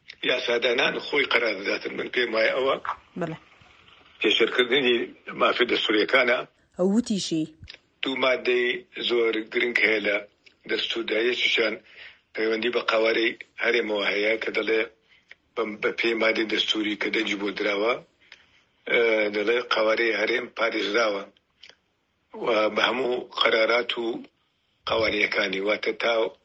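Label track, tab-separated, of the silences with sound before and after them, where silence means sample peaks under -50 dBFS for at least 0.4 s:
21.730000	22.330000	silence
24.270000	24.860000	silence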